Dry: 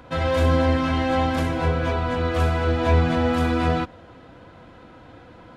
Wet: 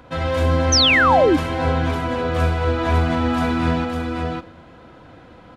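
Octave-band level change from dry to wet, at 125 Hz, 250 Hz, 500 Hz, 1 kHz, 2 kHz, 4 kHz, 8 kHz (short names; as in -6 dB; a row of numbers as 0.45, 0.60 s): +1.0 dB, +2.5 dB, +3.0 dB, +4.5 dB, +7.5 dB, +13.0 dB, n/a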